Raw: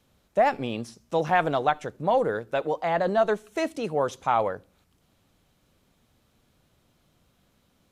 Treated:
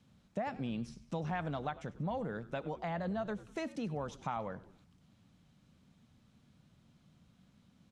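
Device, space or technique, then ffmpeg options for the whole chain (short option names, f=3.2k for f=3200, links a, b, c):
jukebox: -filter_complex "[0:a]highpass=f=180:p=1,lowpass=7.7k,lowshelf=f=280:t=q:w=1.5:g=10.5,acompressor=threshold=-33dB:ratio=3,asplit=5[a][b][c][d][e];[b]adelay=98,afreqshift=-87,volume=-17.5dB[f];[c]adelay=196,afreqshift=-174,volume=-23.9dB[g];[d]adelay=294,afreqshift=-261,volume=-30.3dB[h];[e]adelay=392,afreqshift=-348,volume=-36.6dB[i];[a][f][g][h][i]amix=inputs=5:normalize=0,volume=-4.5dB"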